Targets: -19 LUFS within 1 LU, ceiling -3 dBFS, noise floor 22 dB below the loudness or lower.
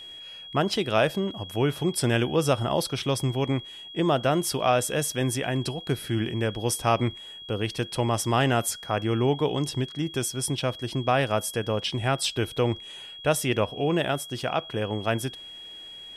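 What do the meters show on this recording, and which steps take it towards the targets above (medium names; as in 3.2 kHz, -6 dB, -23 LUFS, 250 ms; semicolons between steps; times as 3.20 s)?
steady tone 3.3 kHz; tone level -40 dBFS; loudness -26.5 LUFS; peak level -9.0 dBFS; loudness target -19.0 LUFS
-> band-stop 3.3 kHz, Q 30; trim +7.5 dB; peak limiter -3 dBFS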